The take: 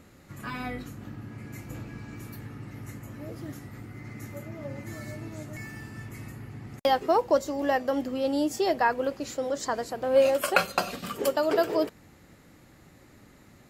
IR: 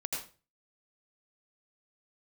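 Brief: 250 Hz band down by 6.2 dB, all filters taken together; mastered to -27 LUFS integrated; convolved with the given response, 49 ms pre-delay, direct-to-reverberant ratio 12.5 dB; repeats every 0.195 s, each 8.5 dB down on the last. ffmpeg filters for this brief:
-filter_complex "[0:a]equalizer=f=250:t=o:g=-8,aecho=1:1:195|390|585|780:0.376|0.143|0.0543|0.0206,asplit=2[a][b];[1:a]atrim=start_sample=2205,adelay=49[c];[b][c]afir=irnorm=-1:irlink=0,volume=-15dB[d];[a][d]amix=inputs=2:normalize=0,volume=1dB"

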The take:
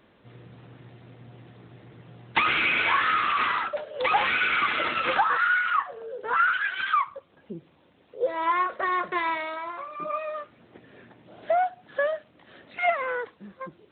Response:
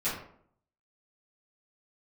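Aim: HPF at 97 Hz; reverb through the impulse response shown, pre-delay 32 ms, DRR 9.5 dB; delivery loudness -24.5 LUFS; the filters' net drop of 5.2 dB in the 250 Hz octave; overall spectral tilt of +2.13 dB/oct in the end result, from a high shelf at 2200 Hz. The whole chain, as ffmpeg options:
-filter_complex "[0:a]highpass=97,equalizer=f=250:t=o:g=-8.5,highshelf=f=2.2k:g=8,asplit=2[a][b];[1:a]atrim=start_sample=2205,adelay=32[c];[b][c]afir=irnorm=-1:irlink=0,volume=-17dB[d];[a][d]amix=inputs=2:normalize=0,volume=-2.5dB"

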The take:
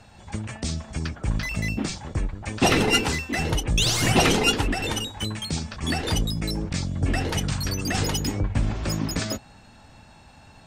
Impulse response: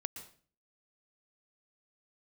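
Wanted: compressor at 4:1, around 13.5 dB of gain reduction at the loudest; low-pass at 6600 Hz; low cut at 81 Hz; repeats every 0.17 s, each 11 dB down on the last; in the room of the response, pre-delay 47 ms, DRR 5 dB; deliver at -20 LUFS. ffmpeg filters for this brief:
-filter_complex "[0:a]highpass=81,lowpass=6.6k,acompressor=threshold=-32dB:ratio=4,aecho=1:1:170|340|510:0.282|0.0789|0.0221,asplit=2[a][b];[1:a]atrim=start_sample=2205,adelay=47[c];[b][c]afir=irnorm=-1:irlink=0,volume=-4dB[d];[a][d]amix=inputs=2:normalize=0,volume=13dB"

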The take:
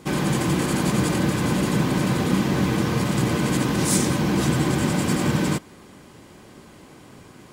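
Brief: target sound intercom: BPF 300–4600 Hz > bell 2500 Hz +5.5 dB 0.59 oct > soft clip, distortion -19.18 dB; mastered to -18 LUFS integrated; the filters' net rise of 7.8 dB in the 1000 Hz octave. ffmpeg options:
-af "highpass=300,lowpass=4.6k,equalizer=f=1k:t=o:g=9,equalizer=f=2.5k:t=o:w=0.59:g=5.5,asoftclip=threshold=-16dB,volume=6dB"

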